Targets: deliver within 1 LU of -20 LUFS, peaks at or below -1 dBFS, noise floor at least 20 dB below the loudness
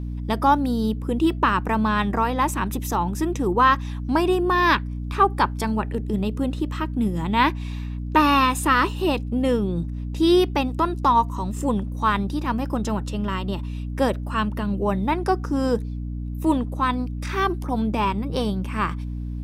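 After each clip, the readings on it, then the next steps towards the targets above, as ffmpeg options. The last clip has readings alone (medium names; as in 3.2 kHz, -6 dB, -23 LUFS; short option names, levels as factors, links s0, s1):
hum 60 Hz; highest harmonic 300 Hz; hum level -27 dBFS; loudness -23.0 LUFS; peak level -4.5 dBFS; loudness target -20.0 LUFS
-> -af "bandreject=f=60:t=h:w=6,bandreject=f=120:t=h:w=6,bandreject=f=180:t=h:w=6,bandreject=f=240:t=h:w=6,bandreject=f=300:t=h:w=6"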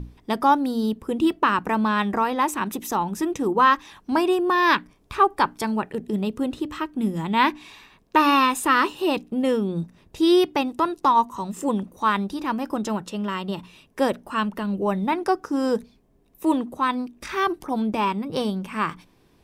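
hum not found; loudness -23.0 LUFS; peak level -5.5 dBFS; loudness target -20.0 LUFS
-> -af "volume=1.41"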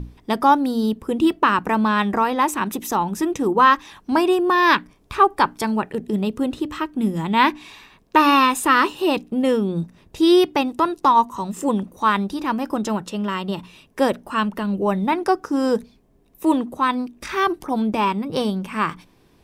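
loudness -20.0 LUFS; peak level -2.5 dBFS; noise floor -56 dBFS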